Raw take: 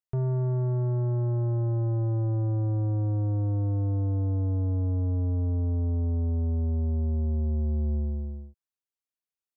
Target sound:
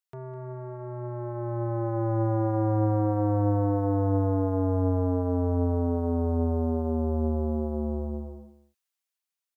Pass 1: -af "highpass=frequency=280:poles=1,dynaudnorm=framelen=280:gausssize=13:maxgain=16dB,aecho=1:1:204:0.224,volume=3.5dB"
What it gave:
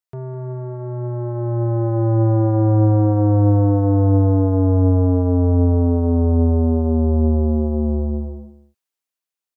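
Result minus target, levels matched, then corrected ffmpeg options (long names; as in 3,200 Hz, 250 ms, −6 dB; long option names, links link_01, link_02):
1,000 Hz band −6.0 dB
-af "highpass=frequency=1100:poles=1,dynaudnorm=framelen=280:gausssize=13:maxgain=16dB,aecho=1:1:204:0.224,volume=3.5dB"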